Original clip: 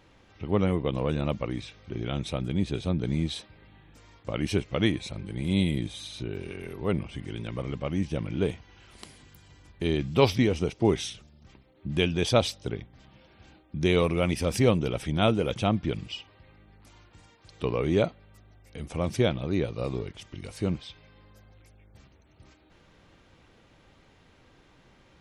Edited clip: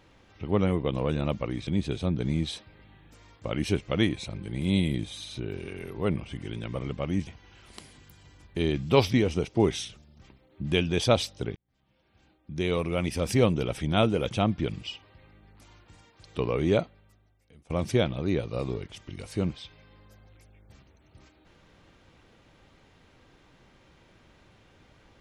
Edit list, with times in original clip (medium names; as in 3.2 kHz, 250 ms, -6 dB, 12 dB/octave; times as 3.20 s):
1.67–2.50 s: delete
8.10–8.52 s: delete
12.81–14.73 s: fade in
18.03–18.95 s: fade out quadratic, to -19 dB